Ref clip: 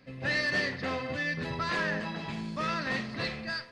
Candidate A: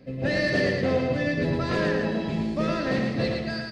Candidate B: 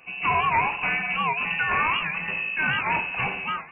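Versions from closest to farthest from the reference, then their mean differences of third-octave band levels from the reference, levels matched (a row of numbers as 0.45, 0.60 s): A, B; 4.5, 11.5 dB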